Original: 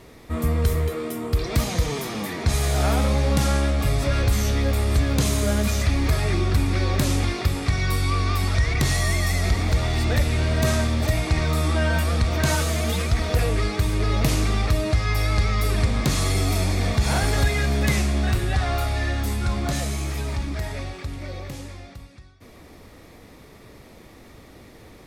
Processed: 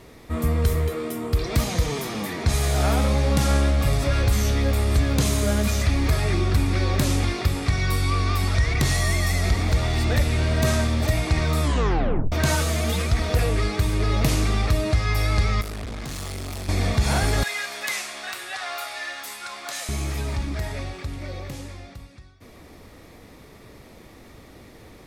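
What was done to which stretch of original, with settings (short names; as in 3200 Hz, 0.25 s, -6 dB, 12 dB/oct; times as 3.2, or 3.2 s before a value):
2.93–3.41 echo throw 0.56 s, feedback 40%, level -11 dB
11.63 tape stop 0.69 s
15.61–16.69 tube stage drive 30 dB, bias 0.75
17.43–19.89 HPF 940 Hz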